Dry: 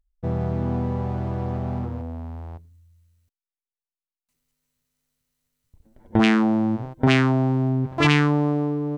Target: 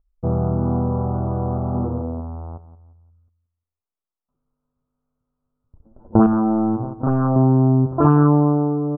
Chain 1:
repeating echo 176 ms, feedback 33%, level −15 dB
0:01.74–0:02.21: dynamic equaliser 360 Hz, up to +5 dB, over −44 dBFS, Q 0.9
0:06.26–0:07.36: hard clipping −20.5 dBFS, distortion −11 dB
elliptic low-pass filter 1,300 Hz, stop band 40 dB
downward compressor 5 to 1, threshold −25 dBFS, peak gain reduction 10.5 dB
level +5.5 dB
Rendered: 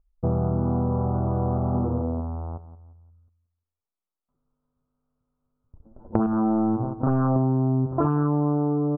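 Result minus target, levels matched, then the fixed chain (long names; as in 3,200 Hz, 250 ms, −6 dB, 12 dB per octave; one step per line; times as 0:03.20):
downward compressor: peak gain reduction +10.5 dB
repeating echo 176 ms, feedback 33%, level −15 dB
0:01.74–0:02.21: dynamic equaliser 360 Hz, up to +5 dB, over −44 dBFS, Q 0.9
0:06.26–0:07.36: hard clipping −20.5 dBFS, distortion −11 dB
elliptic low-pass filter 1,300 Hz, stop band 40 dB
level +5.5 dB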